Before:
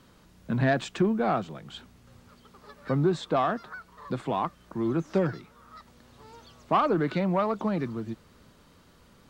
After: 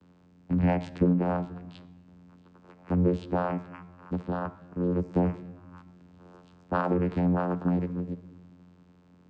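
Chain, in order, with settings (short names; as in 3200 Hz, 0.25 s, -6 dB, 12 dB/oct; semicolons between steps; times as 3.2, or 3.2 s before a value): vocoder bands 8, saw 88.9 Hz; on a send: reverb RT60 1.2 s, pre-delay 5 ms, DRR 13.5 dB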